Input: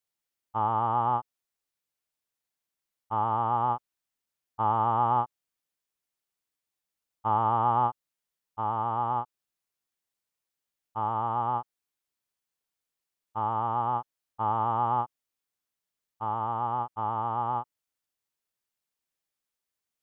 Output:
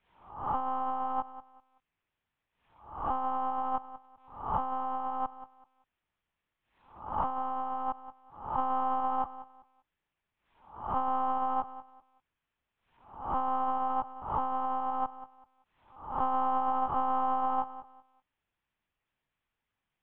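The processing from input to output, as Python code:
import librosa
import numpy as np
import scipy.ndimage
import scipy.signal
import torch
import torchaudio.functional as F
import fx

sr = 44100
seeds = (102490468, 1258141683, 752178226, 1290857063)

p1 = fx.spec_swells(x, sr, rise_s=0.42)
p2 = scipy.signal.sosfilt(scipy.signal.butter(4, 3100.0, 'lowpass', fs=sr, output='sos'), p1)
p3 = fx.low_shelf(p2, sr, hz=200.0, db=-3.0)
p4 = fx.over_compress(p3, sr, threshold_db=-33.0, ratio=-1.0)
p5 = p4 + fx.echo_feedback(p4, sr, ms=192, feedback_pct=25, wet_db=-14.5, dry=0)
p6 = fx.lpc_monotone(p5, sr, seeds[0], pitch_hz=260.0, order=8)
p7 = fx.pre_swell(p6, sr, db_per_s=100.0)
y = p7 * 10.0 ** (2.0 / 20.0)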